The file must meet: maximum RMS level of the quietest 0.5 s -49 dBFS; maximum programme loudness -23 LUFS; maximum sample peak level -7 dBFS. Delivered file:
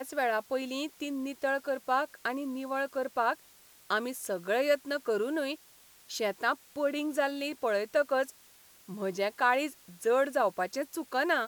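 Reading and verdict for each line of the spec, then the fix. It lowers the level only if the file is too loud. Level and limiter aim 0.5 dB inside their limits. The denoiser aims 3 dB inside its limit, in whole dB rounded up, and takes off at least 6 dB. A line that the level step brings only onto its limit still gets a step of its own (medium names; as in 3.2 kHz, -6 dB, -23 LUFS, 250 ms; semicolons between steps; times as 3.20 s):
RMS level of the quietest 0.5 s -58 dBFS: pass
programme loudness -31.5 LUFS: pass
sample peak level -14.5 dBFS: pass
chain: none needed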